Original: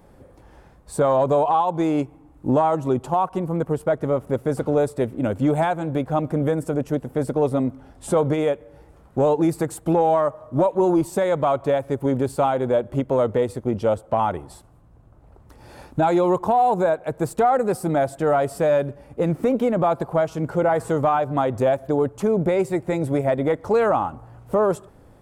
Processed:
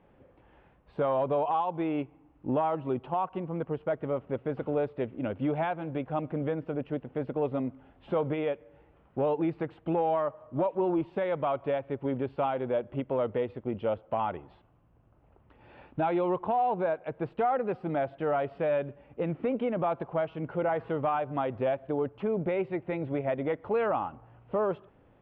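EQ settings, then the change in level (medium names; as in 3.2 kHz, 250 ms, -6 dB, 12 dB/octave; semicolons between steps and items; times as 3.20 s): resonant low-pass 2.9 kHz, resonance Q 3.2; distance through air 370 m; bass shelf 100 Hz -8 dB; -8.0 dB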